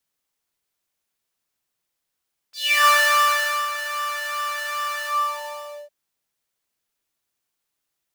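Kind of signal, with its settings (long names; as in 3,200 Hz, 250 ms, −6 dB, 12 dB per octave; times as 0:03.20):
subtractive patch with pulse-width modulation D5, oscillator 2 saw, interval +7 semitones, detune 29 cents, oscillator 2 level −12 dB, sub −29.5 dB, noise −10.5 dB, filter highpass, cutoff 600 Hz, Q 6.7, filter envelope 3 octaves, filter decay 0.31 s, filter sustain 40%, attack 337 ms, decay 0.81 s, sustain −12.5 dB, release 0.89 s, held 2.47 s, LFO 2.5 Hz, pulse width 38%, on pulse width 11%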